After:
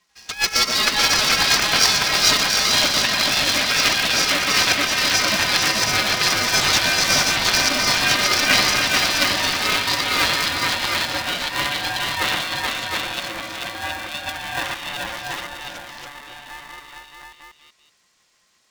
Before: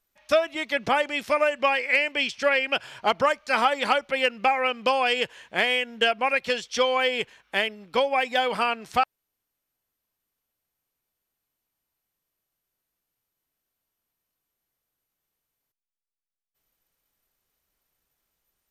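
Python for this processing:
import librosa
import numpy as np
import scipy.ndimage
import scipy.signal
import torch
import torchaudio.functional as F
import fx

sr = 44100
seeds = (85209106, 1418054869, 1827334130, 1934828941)

p1 = fx.band_shuffle(x, sr, order='3142')
p2 = fx.high_shelf(p1, sr, hz=3400.0, db=11.0)
p3 = fx.echo_stepped(p2, sr, ms=113, hz=160.0, octaves=0.7, feedback_pct=70, wet_db=-4.5)
p4 = fx.over_compress(p3, sr, threshold_db=-24.0, ratio=-0.5)
p5 = fx.echo_pitch(p4, sr, ms=91, semitones=-3, count=3, db_per_echo=-3.0)
p6 = scipy.signal.sosfilt(scipy.signal.butter(4, 6300.0, 'lowpass', fs=sr, output='sos'), p5)
p7 = p6 + fx.echo_multitap(p6, sr, ms=(119, 435, 717), db=(-8.5, -3.5, -4.0), dry=0)
p8 = p7 * np.sign(np.sin(2.0 * np.pi * 430.0 * np.arange(len(p7)) / sr))
y = F.gain(torch.from_numpy(p8), 2.5).numpy()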